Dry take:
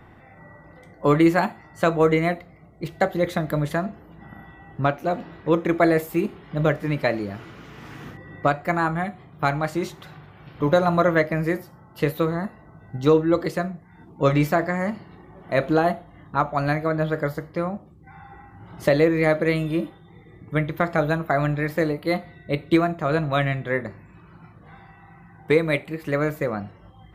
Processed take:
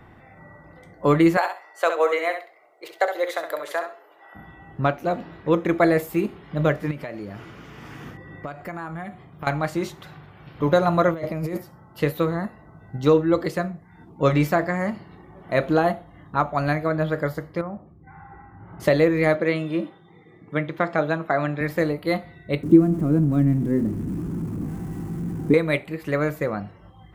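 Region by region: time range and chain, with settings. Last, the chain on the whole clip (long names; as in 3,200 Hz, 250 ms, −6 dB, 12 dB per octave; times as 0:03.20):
0:01.37–0:04.35: inverse Chebyshev high-pass filter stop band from 220 Hz + repeating echo 66 ms, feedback 19%, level −7.5 dB
0:06.91–0:09.47: downward compressor 5 to 1, threshold −30 dBFS + notch filter 4,000 Hz, Q 13
0:11.11–0:11.58: parametric band 1,700 Hz −14 dB 0.39 octaves + compressor whose output falls as the input rises −28 dBFS
0:17.61–0:18.80: low-pass filter 2,000 Hz 24 dB per octave + hum removal 345 Hz, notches 2 + downward compressor 2.5 to 1, threshold −30 dBFS
0:19.35–0:21.61: high-pass filter 180 Hz + high-frequency loss of the air 63 metres
0:22.63–0:25.54: converter with a step at zero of −25 dBFS + drawn EQ curve 120 Hz 0 dB, 280 Hz +10 dB, 570 Hz −13 dB, 1,300 Hz −17 dB, 4,000 Hz −27 dB, 8,300 Hz −14 dB
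whole clip: no processing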